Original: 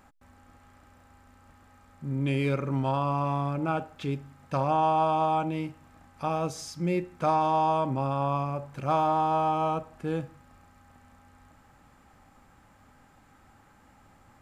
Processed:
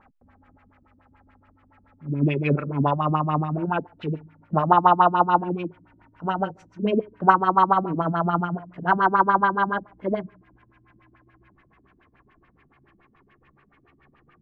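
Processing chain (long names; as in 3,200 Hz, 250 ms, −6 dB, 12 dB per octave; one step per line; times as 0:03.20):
pitch glide at a constant tempo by +6 semitones starting unshifted
auto-filter low-pass sine 7 Hz 200–2,700 Hz
expander for the loud parts 1.5 to 1, over −38 dBFS
level +8 dB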